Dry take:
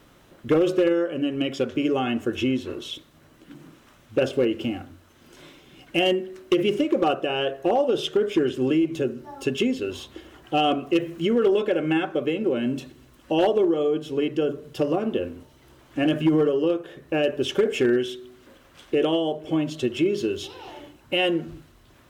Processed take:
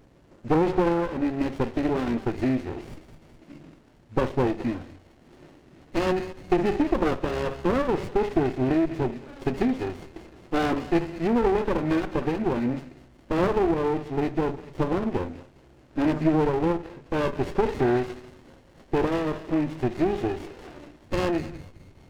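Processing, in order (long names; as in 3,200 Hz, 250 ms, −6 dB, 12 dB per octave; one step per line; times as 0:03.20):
hearing-aid frequency compression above 1,300 Hz 1.5 to 1
feedback echo with a band-pass in the loop 208 ms, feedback 65%, band-pass 2,900 Hz, level −8 dB
windowed peak hold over 33 samples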